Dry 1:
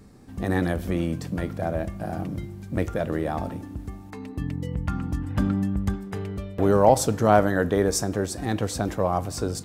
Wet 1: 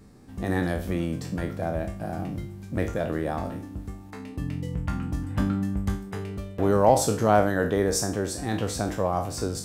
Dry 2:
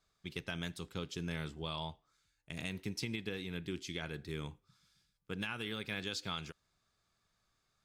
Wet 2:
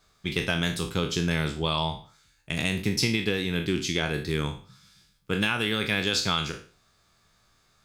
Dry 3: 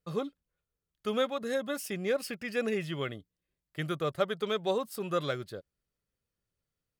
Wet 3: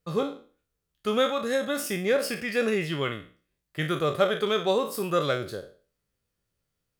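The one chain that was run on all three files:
spectral sustain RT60 0.40 s; normalise loudness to -27 LUFS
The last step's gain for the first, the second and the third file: -2.5 dB, +13.0 dB, +5.0 dB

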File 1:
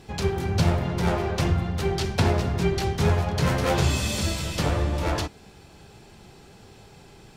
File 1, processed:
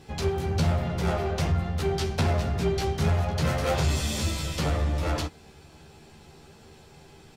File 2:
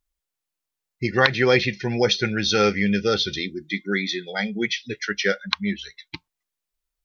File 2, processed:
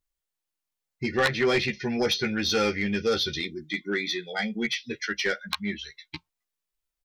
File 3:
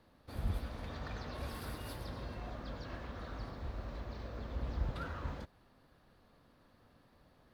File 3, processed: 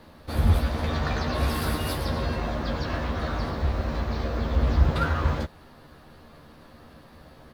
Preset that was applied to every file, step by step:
doubling 13 ms -4 dB; saturation -12.5 dBFS; normalise loudness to -27 LUFS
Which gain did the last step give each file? -3.0 dB, -4.0 dB, +15.0 dB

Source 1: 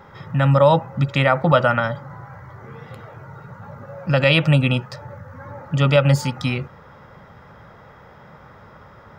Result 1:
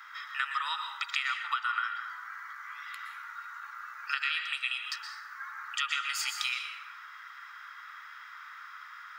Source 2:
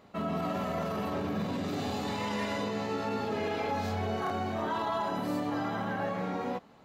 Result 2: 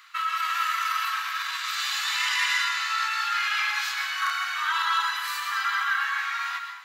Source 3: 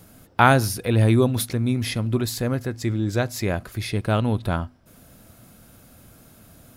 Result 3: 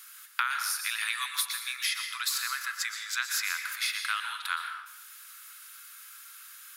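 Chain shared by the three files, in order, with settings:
steep high-pass 1.2 kHz 48 dB/octave; compression 12:1, threshold -32 dBFS; plate-style reverb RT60 0.89 s, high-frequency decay 0.75×, pre-delay 105 ms, DRR 5 dB; peak normalisation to -12 dBFS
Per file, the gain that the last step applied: +3.5 dB, +14.5 dB, +5.5 dB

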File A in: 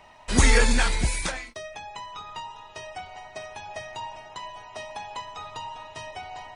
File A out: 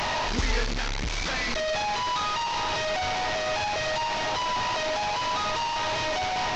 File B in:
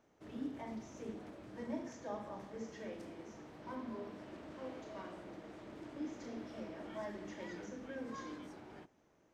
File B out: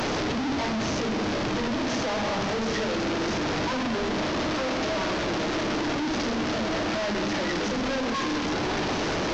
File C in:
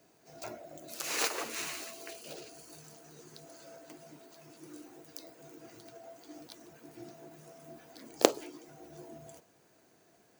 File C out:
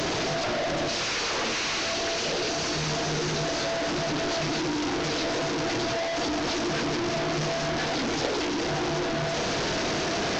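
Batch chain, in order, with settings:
one-bit delta coder 32 kbps, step -12.5 dBFS; echo whose repeats swap between lows and highs 104 ms, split 1.5 kHz, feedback 60%, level -13 dB; normalise loudness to -27 LUFS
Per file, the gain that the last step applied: -9.0 dB, -8.5 dB, -8.5 dB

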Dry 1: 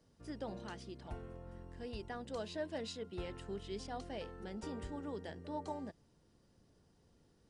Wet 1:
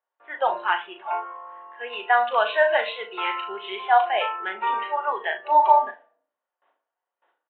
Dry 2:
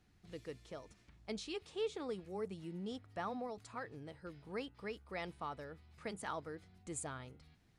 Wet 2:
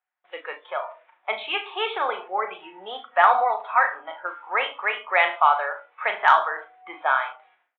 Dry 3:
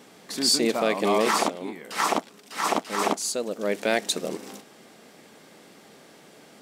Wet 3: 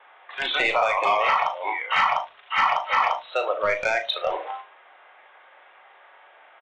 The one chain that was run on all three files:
resampled via 8 kHz; gate with hold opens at -58 dBFS; high-pass 760 Hz 24 dB/octave; level-controlled noise filter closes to 1.8 kHz, open at -27.5 dBFS; in parallel at -0.5 dB: peak limiter -22.5 dBFS; on the sum: compression 10:1, threshold -30 dBFS; overload inside the chain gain 26.5 dB; distance through air 90 m; on a send: flutter echo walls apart 6.4 m, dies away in 0.26 s; on the sum: simulated room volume 670 m³, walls furnished, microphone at 1 m; spectral noise reduction 13 dB; normalise loudness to -23 LUFS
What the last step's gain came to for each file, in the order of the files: +24.0 dB, +22.0 dB, +13.0 dB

